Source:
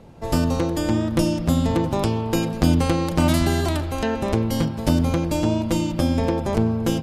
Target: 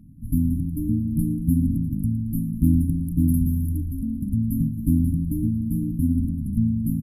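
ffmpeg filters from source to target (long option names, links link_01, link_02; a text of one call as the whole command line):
ffmpeg -i in.wav -filter_complex "[0:a]afftfilt=real='re*(1-between(b*sr/4096,310,9800))':imag='im*(1-between(b*sr/4096,310,9800))':win_size=4096:overlap=0.75,asplit=6[link_01][link_02][link_03][link_04][link_05][link_06];[link_02]adelay=113,afreqshift=-49,volume=-17.5dB[link_07];[link_03]adelay=226,afreqshift=-98,volume=-22.4dB[link_08];[link_04]adelay=339,afreqshift=-147,volume=-27.3dB[link_09];[link_05]adelay=452,afreqshift=-196,volume=-32.1dB[link_10];[link_06]adelay=565,afreqshift=-245,volume=-37dB[link_11];[link_01][link_07][link_08][link_09][link_10][link_11]amix=inputs=6:normalize=0" out.wav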